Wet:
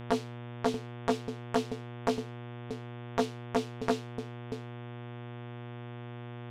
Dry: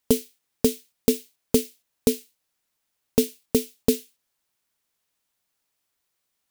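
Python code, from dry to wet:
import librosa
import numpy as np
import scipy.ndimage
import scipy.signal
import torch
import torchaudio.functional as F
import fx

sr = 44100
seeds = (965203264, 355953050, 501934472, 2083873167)

y = scipy.signal.sosfilt(scipy.signal.butter(2, 3900.0, 'lowpass', fs=sr, output='sos'), x)
y = fx.dmg_buzz(y, sr, base_hz=120.0, harmonics=30, level_db=-42.0, tilt_db=-6, odd_only=False)
y = y + 10.0 ** (-16.5 / 20.0) * np.pad(y, (int(636 * sr / 1000.0), 0))[:len(y)]
y = fx.transformer_sat(y, sr, knee_hz=1400.0)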